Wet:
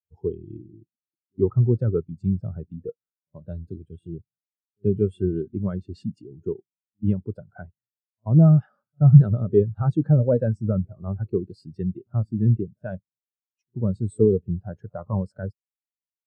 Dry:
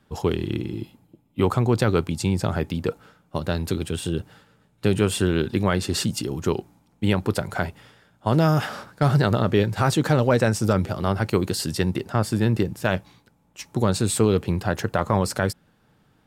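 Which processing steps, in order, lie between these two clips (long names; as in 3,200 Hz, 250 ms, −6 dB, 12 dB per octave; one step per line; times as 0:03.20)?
echo ahead of the sound 82 ms −23 dB
every bin expanded away from the loudest bin 2.5 to 1
level +5 dB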